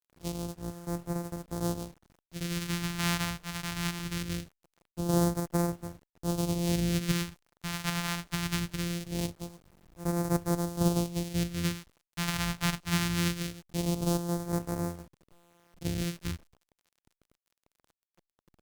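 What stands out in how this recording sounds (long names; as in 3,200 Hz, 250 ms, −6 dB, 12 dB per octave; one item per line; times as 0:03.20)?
a buzz of ramps at a fixed pitch in blocks of 256 samples
phaser sweep stages 2, 0.22 Hz, lowest notch 410–2,800 Hz
a quantiser's noise floor 10 bits, dither none
Opus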